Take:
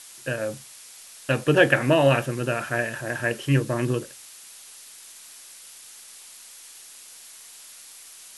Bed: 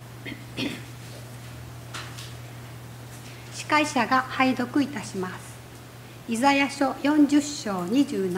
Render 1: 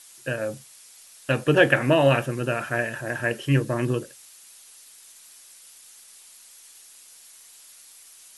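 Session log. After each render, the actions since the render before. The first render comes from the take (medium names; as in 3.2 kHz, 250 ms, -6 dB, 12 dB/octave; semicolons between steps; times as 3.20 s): noise reduction 6 dB, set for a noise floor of -46 dBFS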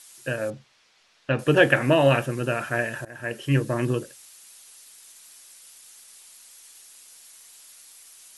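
0.50–1.39 s: distance through air 220 m; 3.05–3.75 s: fade in equal-power, from -21 dB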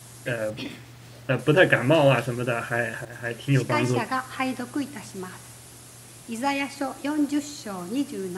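add bed -5.5 dB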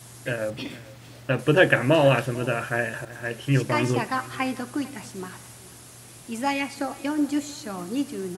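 delay 447 ms -20.5 dB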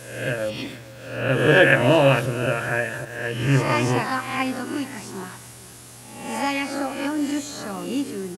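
reverse spectral sustain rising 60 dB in 0.81 s; doubling 15 ms -11 dB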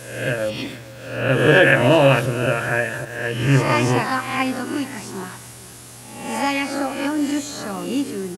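trim +3 dB; peak limiter -3 dBFS, peak gain reduction 2.5 dB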